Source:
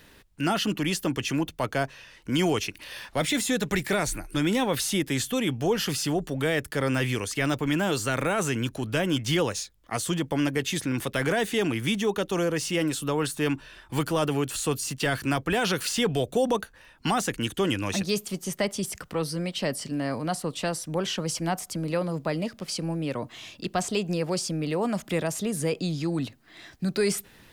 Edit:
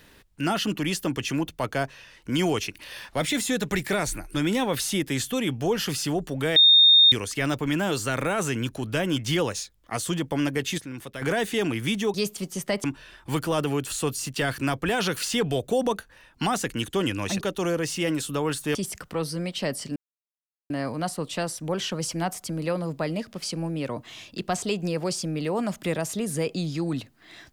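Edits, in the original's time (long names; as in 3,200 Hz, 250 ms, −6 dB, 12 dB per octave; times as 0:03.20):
0:06.56–0:07.12: beep over 3,670 Hz −11.5 dBFS
0:10.78–0:11.22: clip gain −9 dB
0:12.14–0:13.48: swap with 0:18.05–0:18.75
0:19.96: splice in silence 0.74 s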